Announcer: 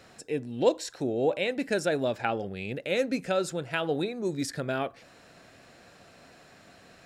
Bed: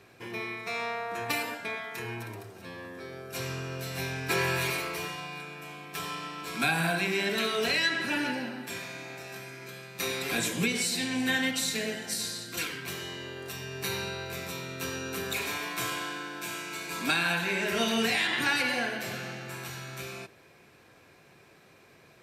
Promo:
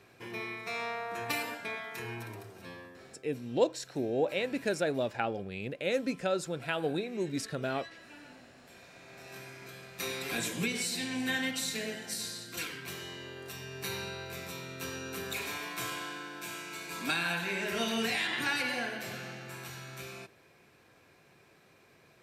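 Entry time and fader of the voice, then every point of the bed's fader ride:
2.95 s, -3.5 dB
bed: 2.71 s -3 dB
3.42 s -23 dB
8.61 s -23 dB
9.37 s -4.5 dB

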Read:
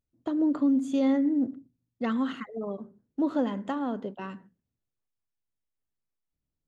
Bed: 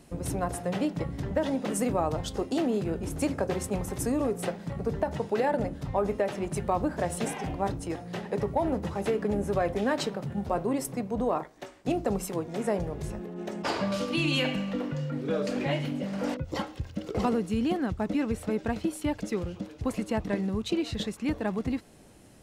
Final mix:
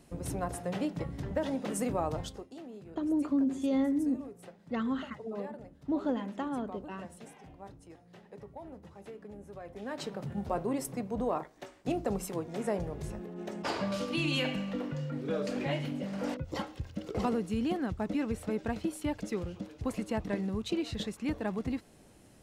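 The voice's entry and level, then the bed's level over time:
2.70 s, -4.5 dB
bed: 2.24 s -4.5 dB
2.48 s -19 dB
9.62 s -19 dB
10.21 s -4 dB

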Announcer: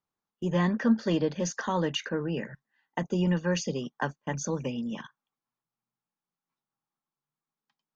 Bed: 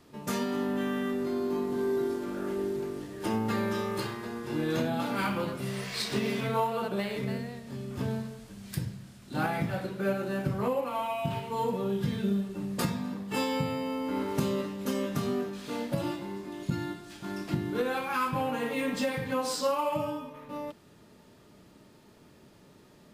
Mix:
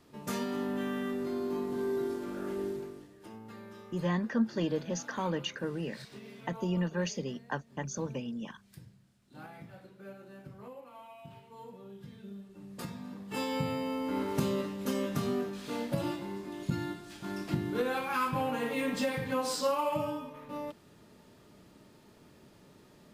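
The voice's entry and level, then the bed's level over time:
3.50 s, -5.0 dB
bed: 2.7 s -3.5 dB
3.28 s -18.5 dB
12.22 s -18.5 dB
13.69 s -1.5 dB

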